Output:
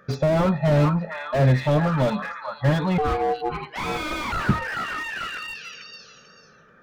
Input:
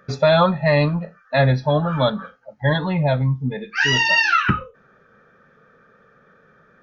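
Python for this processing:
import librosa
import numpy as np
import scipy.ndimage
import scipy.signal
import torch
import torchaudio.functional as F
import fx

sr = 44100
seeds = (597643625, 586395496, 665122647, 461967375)

y = fx.echo_stepped(x, sr, ms=440, hz=1200.0, octaves=0.7, feedback_pct=70, wet_db=-7.0)
y = fx.ring_mod(y, sr, carrier_hz=600.0, at=(2.98, 4.32))
y = fx.slew_limit(y, sr, full_power_hz=72.0)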